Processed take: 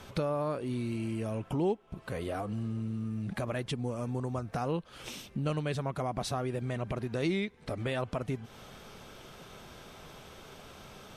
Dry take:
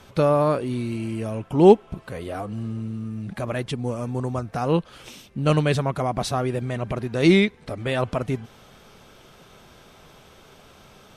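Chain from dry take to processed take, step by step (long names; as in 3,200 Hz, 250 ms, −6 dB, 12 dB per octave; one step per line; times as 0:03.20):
downward compressor 3 to 1, threshold −33 dBFS, peak gain reduction 19 dB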